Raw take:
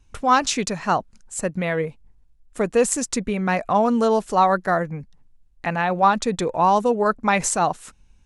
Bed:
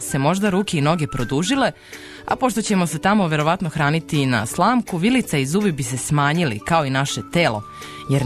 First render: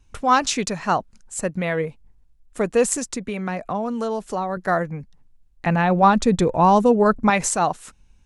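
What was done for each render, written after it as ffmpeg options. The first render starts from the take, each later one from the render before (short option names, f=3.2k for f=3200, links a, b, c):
-filter_complex "[0:a]asettb=1/sr,asplit=3[a][b][c];[a]atrim=end=2.974[d];[b]atrim=start=2.97:end=4.57,asetpts=PTS-STARTPTS,afade=t=in:d=0.004:c=qsin,afade=t=out:st=1.596:d=0.004:c=qsin,acrossover=split=110|530[e][f][g];[e]acompressor=threshold=-47dB:ratio=4[h];[f]acompressor=threshold=-27dB:ratio=4[i];[g]acompressor=threshold=-29dB:ratio=4[j];[h][i][j]amix=inputs=3:normalize=0[k];[c]atrim=start=4.566[l];[d][k]acrossfade=d=0.004:c1=hsin:c2=qsin[m];[m][l]acrossfade=d=0.004:c1=qsin:c2=hsin,asettb=1/sr,asplit=3[n][o][p];[n]atrim=end=5.664[q];[o]atrim=start=5.66:end=7.3,asetpts=PTS-STARTPTS,afade=t=in:d=0.004:c=qsin,afade=t=out:st=1.636:d=0.004:c=qsin,lowshelf=f=320:g=10.5[r];[p]atrim=start=7.296[s];[q][r]acrossfade=d=0.004:c1=hsin:c2=qsin[t];[t][s]acrossfade=d=0.004:c1=qsin:c2=hsin"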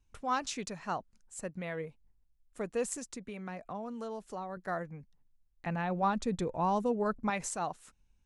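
-af "volume=-15dB"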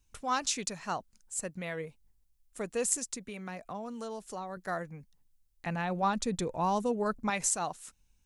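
-af "highshelf=f=3.7k:g=11.5"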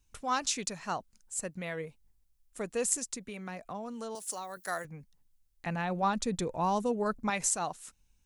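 -filter_complex "[0:a]asettb=1/sr,asplit=3[a][b][c];[a]atrim=end=4.154[d];[b]atrim=start=4.15:end=4.85,asetpts=PTS-STARTPTS,afade=t=in:d=0.004:c=qsin,afade=t=out:st=0.696:d=0.004:c=qsin,aemphasis=mode=production:type=riaa[e];[c]atrim=start=4.846[f];[d][e]acrossfade=d=0.004:c1=hsin:c2=qsin[g];[g][f]acrossfade=d=0.004:c1=qsin:c2=hsin"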